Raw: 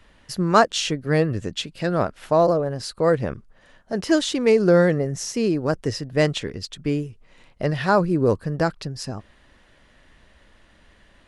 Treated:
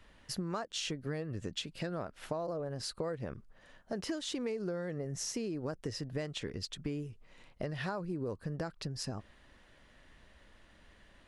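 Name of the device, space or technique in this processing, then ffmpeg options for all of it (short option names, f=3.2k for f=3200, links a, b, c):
serial compression, leveller first: -af "acompressor=threshold=-23dB:ratio=2,acompressor=threshold=-28dB:ratio=6,volume=-6dB"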